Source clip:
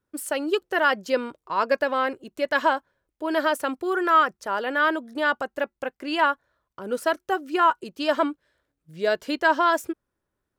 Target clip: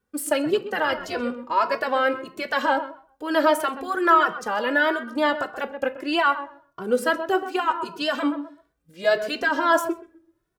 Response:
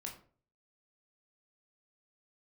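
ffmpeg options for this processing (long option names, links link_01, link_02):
-filter_complex "[0:a]alimiter=limit=-14dB:level=0:latency=1:release=33,asplit=2[link_01][link_02];[link_02]adelay=128,lowpass=frequency=1900:poles=1,volume=-12dB,asplit=2[link_03][link_04];[link_04]adelay=128,lowpass=frequency=1900:poles=1,volume=0.21,asplit=2[link_05][link_06];[link_06]adelay=128,lowpass=frequency=1900:poles=1,volume=0.21[link_07];[link_03][link_05][link_07]amix=inputs=3:normalize=0[link_08];[link_01][link_08]amix=inputs=2:normalize=0,asplit=3[link_09][link_10][link_11];[link_09]afade=type=out:start_time=0.45:duration=0.02[link_12];[link_10]tremolo=f=170:d=0.571,afade=type=in:start_time=0.45:duration=0.02,afade=type=out:start_time=1.19:duration=0.02[link_13];[link_11]afade=type=in:start_time=1.19:duration=0.02[link_14];[link_12][link_13][link_14]amix=inputs=3:normalize=0,asplit=2[link_15][link_16];[1:a]atrim=start_sample=2205[link_17];[link_16][link_17]afir=irnorm=-1:irlink=0,volume=-3.5dB[link_18];[link_15][link_18]amix=inputs=2:normalize=0,asplit=2[link_19][link_20];[link_20]adelay=2.2,afreqshift=1.6[link_21];[link_19][link_21]amix=inputs=2:normalize=1,volume=3.5dB"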